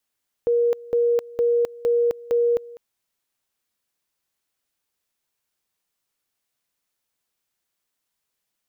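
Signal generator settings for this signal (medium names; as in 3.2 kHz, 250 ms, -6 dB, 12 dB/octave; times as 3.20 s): two-level tone 474 Hz -16 dBFS, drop 21 dB, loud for 0.26 s, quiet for 0.20 s, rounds 5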